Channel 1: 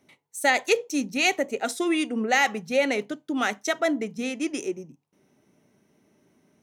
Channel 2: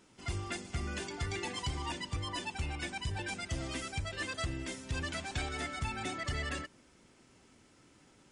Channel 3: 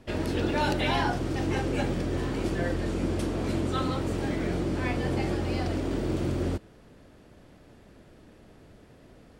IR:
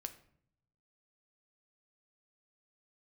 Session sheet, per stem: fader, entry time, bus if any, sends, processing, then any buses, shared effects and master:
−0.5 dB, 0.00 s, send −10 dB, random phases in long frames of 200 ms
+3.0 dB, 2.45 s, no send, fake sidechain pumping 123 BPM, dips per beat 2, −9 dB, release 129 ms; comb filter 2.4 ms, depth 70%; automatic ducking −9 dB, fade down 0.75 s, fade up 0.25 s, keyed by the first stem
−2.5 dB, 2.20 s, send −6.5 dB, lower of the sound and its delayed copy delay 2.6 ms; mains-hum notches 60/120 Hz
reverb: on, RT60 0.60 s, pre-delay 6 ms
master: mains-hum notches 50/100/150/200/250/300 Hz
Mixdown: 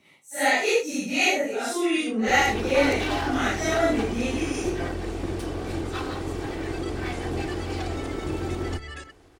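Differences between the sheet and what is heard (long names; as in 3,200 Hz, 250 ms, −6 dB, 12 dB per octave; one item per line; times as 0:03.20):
stem 2 +3.0 dB → −3.5 dB
master: missing mains-hum notches 50/100/150/200/250/300 Hz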